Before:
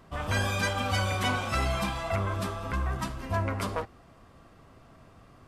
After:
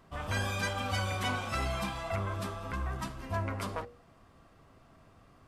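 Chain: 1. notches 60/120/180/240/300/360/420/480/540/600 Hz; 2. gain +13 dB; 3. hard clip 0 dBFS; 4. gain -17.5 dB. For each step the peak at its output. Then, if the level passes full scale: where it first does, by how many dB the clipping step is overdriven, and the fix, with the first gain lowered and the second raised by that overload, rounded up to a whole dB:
-15.0, -2.0, -2.0, -19.5 dBFS; no overload

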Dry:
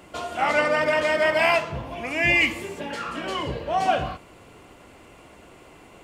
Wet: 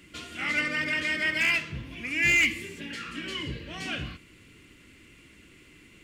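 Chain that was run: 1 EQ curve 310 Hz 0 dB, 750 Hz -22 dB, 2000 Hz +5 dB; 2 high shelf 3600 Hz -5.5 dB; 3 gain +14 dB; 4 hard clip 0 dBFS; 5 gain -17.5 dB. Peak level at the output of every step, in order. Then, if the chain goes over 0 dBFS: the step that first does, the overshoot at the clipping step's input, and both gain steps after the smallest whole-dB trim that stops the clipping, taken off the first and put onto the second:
-4.5, -6.0, +8.0, 0.0, -17.5 dBFS; step 3, 8.0 dB; step 3 +6 dB, step 5 -9.5 dB

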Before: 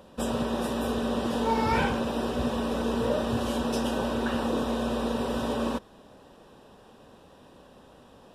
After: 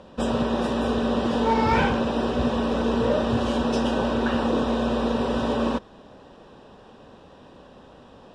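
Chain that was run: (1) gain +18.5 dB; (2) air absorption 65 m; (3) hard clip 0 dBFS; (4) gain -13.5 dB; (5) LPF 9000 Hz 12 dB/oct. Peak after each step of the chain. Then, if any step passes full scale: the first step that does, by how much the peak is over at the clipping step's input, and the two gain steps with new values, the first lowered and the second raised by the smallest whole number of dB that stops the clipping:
+5.0, +5.0, 0.0, -13.5, -13.5 dBFS; step 1, 5.0 dB; step 1 +13.5 dB, step 4 -8.5 dB

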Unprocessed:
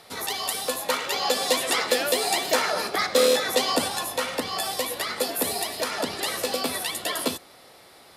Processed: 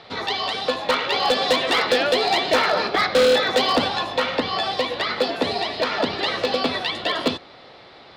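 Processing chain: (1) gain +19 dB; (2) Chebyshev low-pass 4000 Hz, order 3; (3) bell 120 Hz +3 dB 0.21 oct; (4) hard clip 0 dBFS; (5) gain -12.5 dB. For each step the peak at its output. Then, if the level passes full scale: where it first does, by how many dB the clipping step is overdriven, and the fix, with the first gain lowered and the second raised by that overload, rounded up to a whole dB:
+12.0, +10.0, +10.0, 0.0, -12.5 dBFS; step 1, 10.0 dB; step 1 +9 dB, step 5 -2.5 dB

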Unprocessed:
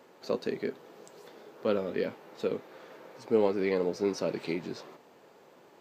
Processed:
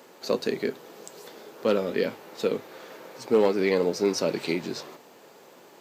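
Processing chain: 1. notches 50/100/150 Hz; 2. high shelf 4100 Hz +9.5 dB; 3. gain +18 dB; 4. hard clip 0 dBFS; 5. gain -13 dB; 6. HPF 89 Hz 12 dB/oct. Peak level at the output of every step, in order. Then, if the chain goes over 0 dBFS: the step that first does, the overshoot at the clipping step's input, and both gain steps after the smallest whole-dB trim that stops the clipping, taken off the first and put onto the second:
-12.5, -12.5, +5.5, 0.0, -13.0, -10.5 dBFS; step 3, 5.5 dB; step 3 +12 dB, step 5 -7 dB

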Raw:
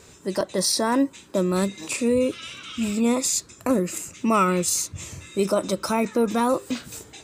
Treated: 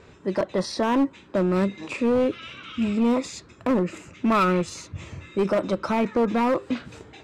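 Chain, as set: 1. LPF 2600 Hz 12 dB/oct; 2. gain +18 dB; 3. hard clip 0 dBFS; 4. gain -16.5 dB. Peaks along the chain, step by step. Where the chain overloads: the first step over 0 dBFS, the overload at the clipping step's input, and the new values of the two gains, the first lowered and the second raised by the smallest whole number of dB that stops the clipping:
-10.5, +7.5, 0.0, -16.5 dBFS; step 2, 7.5 dB; step 2 +10 dB, step 4 -8.5 dB

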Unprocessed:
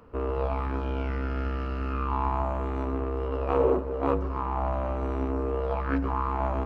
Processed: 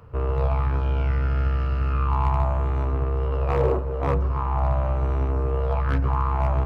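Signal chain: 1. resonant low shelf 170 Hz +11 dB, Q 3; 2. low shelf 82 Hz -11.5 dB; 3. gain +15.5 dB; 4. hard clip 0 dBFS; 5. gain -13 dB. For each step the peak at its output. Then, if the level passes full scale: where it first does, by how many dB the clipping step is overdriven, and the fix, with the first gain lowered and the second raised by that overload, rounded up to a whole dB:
-7.5, -10.5, +5.0, 0.0, -13.0 dBFS; step 3, 5.0 dB; step 3 +10.5 dB, step 5 -8 dB

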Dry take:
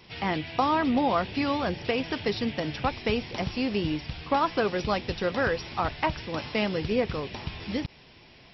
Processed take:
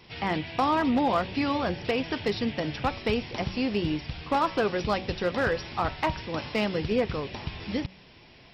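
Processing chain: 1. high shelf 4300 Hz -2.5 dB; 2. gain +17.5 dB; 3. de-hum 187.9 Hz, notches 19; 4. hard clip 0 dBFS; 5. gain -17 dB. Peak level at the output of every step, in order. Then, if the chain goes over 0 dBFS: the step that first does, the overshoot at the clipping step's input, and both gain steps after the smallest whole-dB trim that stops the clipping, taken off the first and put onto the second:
-11.5, +6.0, +6.0, 0.0, -17.0 dBFS; step 2, 6.0 dB; step 2 +11.5 dB, step 5 -11 dB

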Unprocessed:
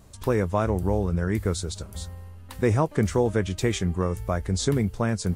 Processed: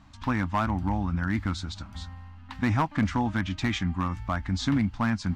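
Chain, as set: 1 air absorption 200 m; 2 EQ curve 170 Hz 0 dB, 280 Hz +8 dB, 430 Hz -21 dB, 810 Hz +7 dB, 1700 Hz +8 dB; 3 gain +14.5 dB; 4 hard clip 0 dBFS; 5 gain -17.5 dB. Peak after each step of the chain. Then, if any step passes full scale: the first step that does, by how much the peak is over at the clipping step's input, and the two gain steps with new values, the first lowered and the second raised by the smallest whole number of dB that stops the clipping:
-10.0, -7.0, +7.5, 0.0, -17.5 dBFS; step 3, 7.5 dB; step 3 +6.5 dB, step 5 -9.5 dB

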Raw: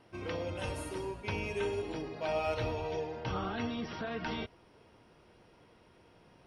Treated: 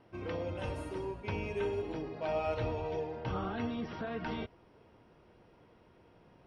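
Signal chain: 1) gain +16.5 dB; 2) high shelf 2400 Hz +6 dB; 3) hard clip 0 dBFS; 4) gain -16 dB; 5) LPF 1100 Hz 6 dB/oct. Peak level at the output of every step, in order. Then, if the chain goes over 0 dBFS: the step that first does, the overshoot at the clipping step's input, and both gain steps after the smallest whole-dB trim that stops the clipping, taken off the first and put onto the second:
-5.5, -4.5, -4.5, -20.5, -23.0 dBFS; no overload

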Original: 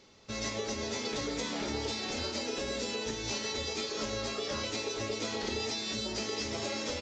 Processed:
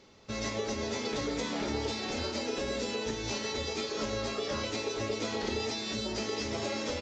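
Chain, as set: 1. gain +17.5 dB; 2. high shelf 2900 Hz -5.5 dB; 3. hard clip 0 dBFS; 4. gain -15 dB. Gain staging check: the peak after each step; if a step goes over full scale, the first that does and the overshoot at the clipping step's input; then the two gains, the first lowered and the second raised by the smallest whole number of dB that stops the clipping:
-4.0, -5.5, -5.5, -20.5 dBFS; no overload

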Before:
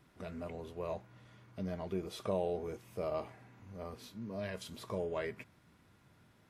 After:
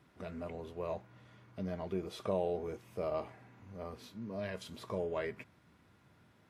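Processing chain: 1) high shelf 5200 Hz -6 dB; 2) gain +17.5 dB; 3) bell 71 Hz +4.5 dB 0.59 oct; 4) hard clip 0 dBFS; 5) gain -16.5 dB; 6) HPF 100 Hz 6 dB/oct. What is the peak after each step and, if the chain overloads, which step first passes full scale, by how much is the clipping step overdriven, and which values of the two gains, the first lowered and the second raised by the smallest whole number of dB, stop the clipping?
-22.0, -4.5, -4.5, -4.5, -21.0, -20.5 dBFS; no overload

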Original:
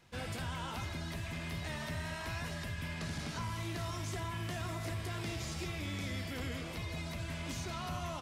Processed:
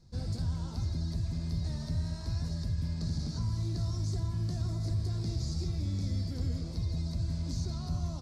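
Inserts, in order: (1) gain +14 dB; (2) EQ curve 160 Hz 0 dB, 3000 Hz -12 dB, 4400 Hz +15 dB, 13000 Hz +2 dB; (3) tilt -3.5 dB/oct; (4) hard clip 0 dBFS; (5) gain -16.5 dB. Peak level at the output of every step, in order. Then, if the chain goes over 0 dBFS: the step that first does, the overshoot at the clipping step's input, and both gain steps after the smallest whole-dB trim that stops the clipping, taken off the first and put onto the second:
-16.5, -7.0, -5.5, -5.5, -22.0 dBFS; no overload

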